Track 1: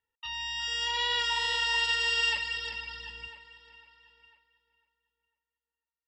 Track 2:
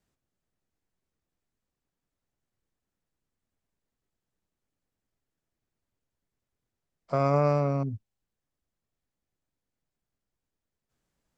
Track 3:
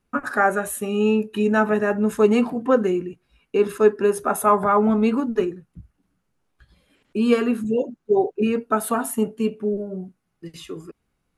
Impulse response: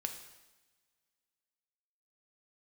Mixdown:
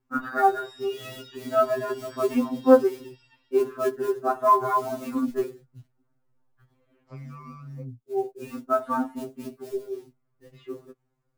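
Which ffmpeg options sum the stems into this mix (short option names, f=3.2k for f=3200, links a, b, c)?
-filter_complex "[0:a]acrossover=split=130[a][b];[b]acompressor=threshold=-36dB:ratio=2.5[c];[a][c]amix=inputs=2:normalize=0,volume=-8.5dB[d];[1:a]acompressor=threshold=-25dB:ratio=6,volume=-8dB,asplit=2[e][f];[2:a]lowpass=1.4k,acrusher=bits=7:mode=log:mix=0:aa=0.000001,volume=0dB[g];[f]apad=whole_len=501746[h];[g][h]sidechaincompress=threshold=-56dB:ratio=10:attack=16:release=508[i];[d][e][i]amix=inputs=3:normalize=0,afftfilt=real='re*2.45*eq(mod(b,6),0)':imag='im*2.45*eq(mod(b,6),0)':win_size=2048:overlap=0.75"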